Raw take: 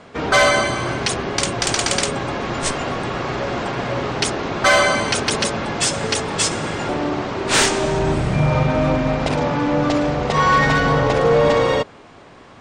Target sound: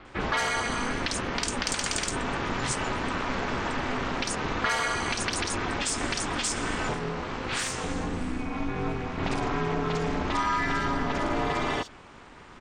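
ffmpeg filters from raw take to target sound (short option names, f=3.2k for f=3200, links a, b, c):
-filter_complex "[0:a]equalizer=f=480:w=1.7:g=-12.5,acompressor=threshold=-22dB:ratio=6,asplit=3[a][b][c];[a]afade=t=out:st=6.93:d=0.02[d];[b]flanger=delay=17:depth=2.9:speed=1.2,afade=t=in:st=6.93:d=0.02,afade=t=out:st=9.17:d=0.02[e];[c]afade=t=in:st=9.17:d=0.02[f];[d][e][f]amix=inputs=3:normalize=0,aeval=exprs='val(0)*sin(2*PI*130*n/s)':c=same,acrossover=split=4300[g][h];[h]adelay=50[i];[g][i]amix=inputs=2:normalize=0,volume=1dB"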